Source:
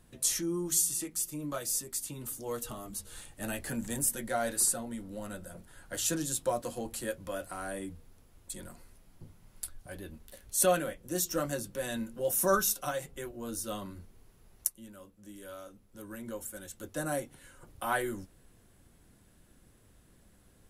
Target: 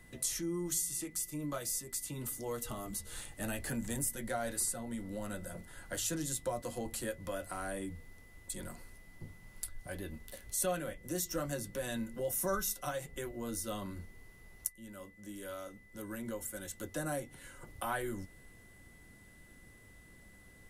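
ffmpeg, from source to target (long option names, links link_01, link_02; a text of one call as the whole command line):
ffmpeg -i in.wav -filter_complex "[0:a]acrossover=split=120[link_01][link_02];[link_02]acompressor=threshold=-42dB:ratio=2[link_03];[link_01][link_03]amix=inputs=2:normalize=0,aeval=exprs='val(0)+0.000708*sin(2*PI*2000*n/s)':channel_layout=same,volume=2.5dB" out.wav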